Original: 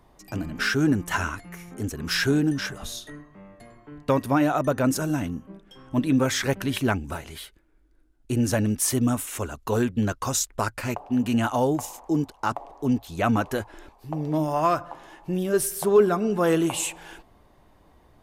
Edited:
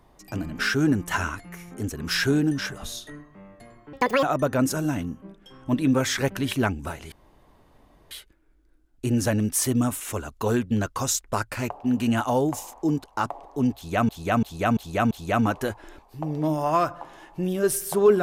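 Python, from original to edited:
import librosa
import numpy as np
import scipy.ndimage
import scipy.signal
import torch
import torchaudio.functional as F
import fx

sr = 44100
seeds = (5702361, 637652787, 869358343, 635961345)

y = fx.edit(x, sr, fx.speed_span(start_s=3.93, length_s=0.55, speed=1.84),
    fx.insert_room_tone(at_s=7.37, length_s=0.99),
    fx.repeat(start_s=13.01, length_s=0.34, count=5), tone=tone)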